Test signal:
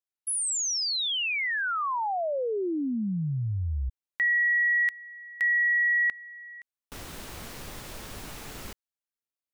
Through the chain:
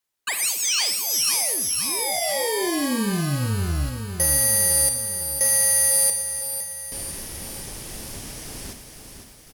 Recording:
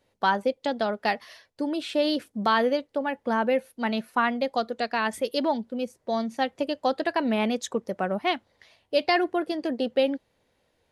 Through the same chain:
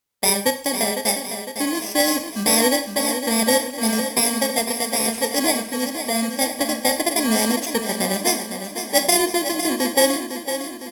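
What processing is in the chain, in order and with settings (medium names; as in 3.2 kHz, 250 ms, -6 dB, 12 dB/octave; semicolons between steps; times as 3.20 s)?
bit-reversed sample order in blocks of 32 samples; low-pass 10 kHz 12 dB/octave; treble shelf 4.6 kHz +5.5 dB; short-mantissa float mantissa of 2-bit; on a send: feedback delay 506 ms, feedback 57%, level -8 dB; on the sum: word length cut 10-bit, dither triangular; Chebyshev shaper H 7 -29 dB, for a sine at -7.5 dBFS; Schroeder reverb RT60 0.51 s, combs from 28 ms, DRR 8.5 dB; gate -54 dBFS, range -25 dB; trim +6.5 dB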